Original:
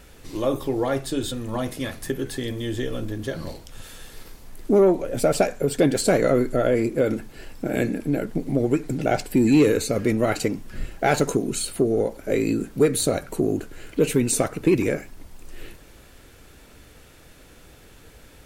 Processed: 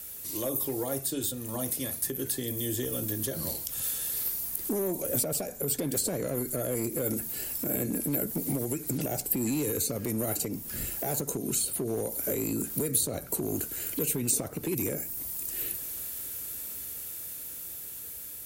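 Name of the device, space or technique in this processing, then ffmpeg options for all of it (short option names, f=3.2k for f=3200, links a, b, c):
FM broadcast chain: -filter_complex "[0:a]highpass=60,dynaudnorm=f=870:g=7:m=11.5dB,acrossover=split=150|840|5900[a][b][c][d];[a]acompressor=threshold=-27dB:ratio=4[e];[b]acompressor=threshold=-20dB:ratio=4[f];[c]acompressor=threshold=-41dB:ratio=4[g];[d]acompressor=threshold=-48dB:ratio=4[h];[e][f][g][h]amix=inputs=4:normalize=0,aemphasis=mode=production:type=50fm,alimiter=limit=-14dB:level=0:latency=1:release=95,asoftclip=type=hard:threshold=-17dB,lowpass=f=15k:w=0.5412,lowpass=f=15k:w=1.3066,aemphasis=mode=production:type=50fm,volume=-7dB"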